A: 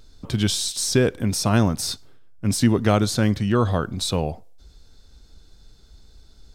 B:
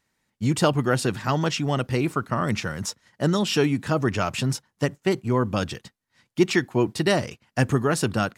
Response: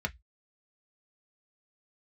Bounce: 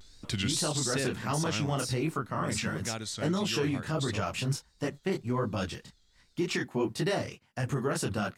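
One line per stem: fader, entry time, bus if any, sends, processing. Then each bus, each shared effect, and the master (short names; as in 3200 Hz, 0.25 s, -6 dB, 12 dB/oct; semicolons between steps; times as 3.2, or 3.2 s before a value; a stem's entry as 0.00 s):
-7.0 dB, 0.00 s, no send, graphic EQ 2000/4000/8000 Hz +9/+6/+11 dB; wow and flutter 140 cents; auto duck -13 dB, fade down 1.70 s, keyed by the second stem
-1.5 dB, 0.00 s, no send, detuned doubles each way 50 cents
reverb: off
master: limiter -20.5 dBFS, peak gain reduction 10 dB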